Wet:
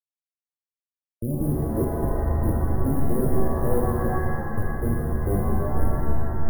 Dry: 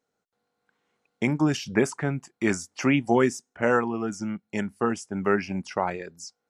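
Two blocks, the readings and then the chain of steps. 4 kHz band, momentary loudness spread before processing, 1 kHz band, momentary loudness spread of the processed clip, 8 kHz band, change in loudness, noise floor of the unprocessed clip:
under -25 dB, 9 LU, -1.5 dB, 4 LU, -7.0 dB, +0.5 dB, -81 dBFS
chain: Schmitt trigger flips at -21 dBFS; brick-wall FIR band-stop 620–9200 Hz; shimmer reverb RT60 2.1 s, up +7 st, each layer -2 dB, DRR -1 dB; gain +2.5 dB

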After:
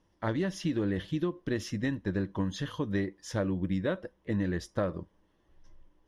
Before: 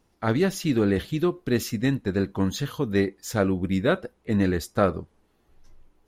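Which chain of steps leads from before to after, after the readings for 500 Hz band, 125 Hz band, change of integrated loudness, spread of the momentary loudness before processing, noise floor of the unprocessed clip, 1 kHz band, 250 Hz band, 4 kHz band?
-9.0 dB, -6.5 dB, -7.5 dB, 4 LU, -67 dBFS, -9.5 dB, -7.0 dB, -7.5 dB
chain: ripple EQ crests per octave 1.2, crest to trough 7 dB; compressor, threshold -22 dBFS, peak gain reduction 8 dB; air absorption 65 m; gain -4 dB

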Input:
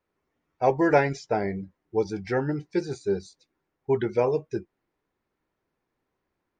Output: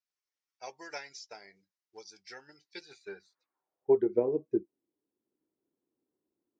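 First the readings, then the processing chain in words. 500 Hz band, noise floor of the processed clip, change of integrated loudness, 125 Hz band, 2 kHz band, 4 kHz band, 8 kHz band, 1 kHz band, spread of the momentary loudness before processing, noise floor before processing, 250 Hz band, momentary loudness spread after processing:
-7.0 dB, under -85 dBFS, -4.5 dB, -20.5 dB, -15.0 dB, -3.5 dB, n/a, -18.0 dB, 11 LU, -81 dBFS, -8.5 dB, 22 LU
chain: transient shaper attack +5 dB, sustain -2 dB; band-pass sweep 5400 Hz -> 310 Hz, 2.56–4.19

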